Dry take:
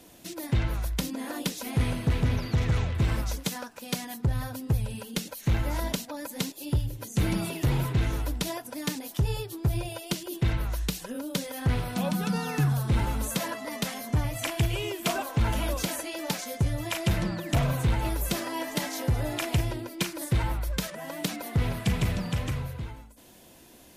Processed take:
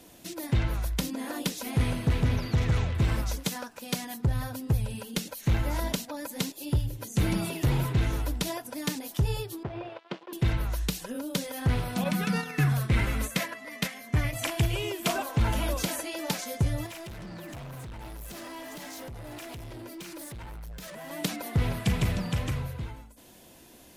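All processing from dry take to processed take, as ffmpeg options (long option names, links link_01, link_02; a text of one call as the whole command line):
ffmpeg -i in.wav -filter_complex "[0:a]asettb=1/sr,asplit=3[link_01][link_02][link_03];[link_01]atrim=end=9.634[link_04];[link_02]atrim=start=9.63:end=10.33,asetpts=PTS-STARTPTS,afade=type=in:duration=0.004:curve=qsin,afade=type=out:start_time=0.696:duration=0.004:curve=qsin,aemphasis=mode=reproduction:type=riaa,aeval=exprs='sgn(val(0))*max(abs(val(0))-0.0133,0)':channel_layout=same,highpass=470,lowpass=3000[link_05];[link_03]atrim=start=10.326[link_06];[link_04][link_05]acrossfade=duration=0.004:curve1=hsin:curve2=qsin[link_07];[link_07][link_06]acrossfade=duration=0.004:curve1=qsin:curve2=hsin,asettb=1/sr,asplit=3[link_08][link_09][link_10];[link_08]atrim=end=12.044[link_11];[link_09]atrim=start=12.04:end=14.33,asetpts=PTS-STARTPTS,afade=type=in:duration=0.004:curve=qsin,afade=type=out:start_time=2.286:duration=0.004:curve=qsin,bandreject=frequency=880:width=9.7,agate=range=-9dB:threshold=-32dB:ratio=16:release=100:detection=peak,equalizer=frequency=2100:width=1.8:gain=9.5[link_12];[link_10]atrim=start=14.326[link_13];[link_11][link_12]acrossfade=duration=0.004:curve1=hsin:curve2=qsin[link_14];[link_14][link_13]acrossfade=duration=0.004:curve1=qsin:curve2=hsin,asettb=1/sr,asplit=3[link_15][link_16][link_17];[link_15]atrim=end=16.864[link_18];[link_16]atrim=start=16.86:end=21.11,asetpts=PTS-STARTPTS,afade=type=in:duration=0.004:curve=qsin,afade=type=out:start_time=4.246:duration=0.004:curve=qsin,acompressor=threshold=-35dB:ratio=4:attack=3.2:release=140:knee=1:detection=peak,asoftclip=type=hard:threshold=-38.5dB[link_19];[link_17]atrim=start=21.106[link_20];[link_18][link_19]acrossfade=duration=0.004:curve1=hsin:curve2=qsin[link_21];[link_21][link_20]acrossfade=duration=0.004:curve1=qsin:curve2=hsin" out.wav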